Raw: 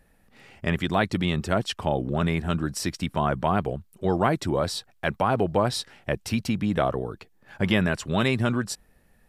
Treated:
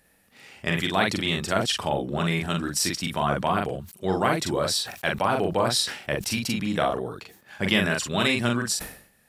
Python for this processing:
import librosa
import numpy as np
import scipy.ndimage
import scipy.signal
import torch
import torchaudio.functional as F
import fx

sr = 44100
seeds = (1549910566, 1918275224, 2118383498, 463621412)

y = fx.highpass(x, sr, hz=130.0, slope=6)
y = fx.high_shelf(y, sr, hz=2200.0, db=9.5)
y = fx.doubler(y, sr, ms=42.0, db=-3.5)
y = fx.sustainer(y, sr, db_per_s=100.0)
y = F.gain(torch.from_numpy(y), -2.5).numpy()